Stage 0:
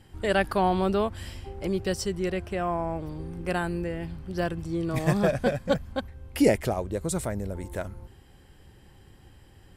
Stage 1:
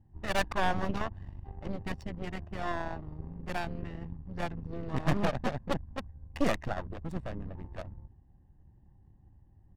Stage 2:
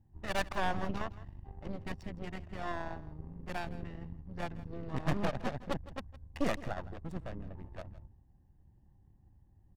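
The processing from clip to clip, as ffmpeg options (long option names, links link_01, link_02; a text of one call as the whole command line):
ffmpeg -i in.wav -af "adynamicsmooth=sensitivity=4:basefreq=540,aecho=1:1:1.1:0.66,aeval=exprs='0.376*(cos(1*acos(clip(val(0)/0.376,-1,1)))-cos(1*PI/2))+0.119*(cos(6*acos(clip(val(0)/0.376,-1,1)))-cos(6*PI/2))':channel_layout=same,volume=-9dB" out.wav
ffmpeg -i in.wav -af "aecho=1:1:163:0.133,volume=-4dB" out.wav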